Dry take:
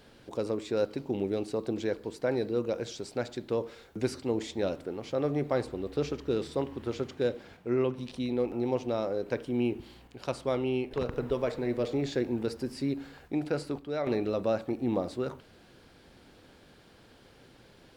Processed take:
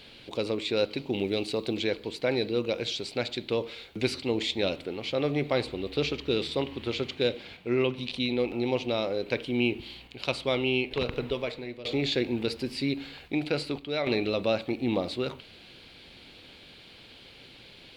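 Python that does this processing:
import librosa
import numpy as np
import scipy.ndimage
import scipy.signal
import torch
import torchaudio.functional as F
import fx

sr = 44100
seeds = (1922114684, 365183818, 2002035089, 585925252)

y = fx.high_shelf(x, sr, hz=4700.0, db=4.5, at=(1.13, 1.79))
y = fx.edit(y, sr, fx.fade_out_to(start_s=11.11, length_s=0.74, floor_db=-17.5), tone=tone)
y = fx.band_shelf(y, sr, hz=3100.0, db=12.5, octaves=1.3)
y = F.gain(torch.from_numpy(y), 1.5).numpy()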